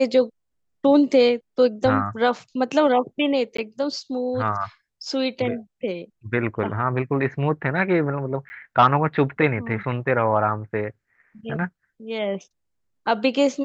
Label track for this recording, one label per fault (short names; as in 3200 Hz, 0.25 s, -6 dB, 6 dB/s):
3.570000	3.580000	gap 14 ms
8.490000	8.500000	gap 10 ms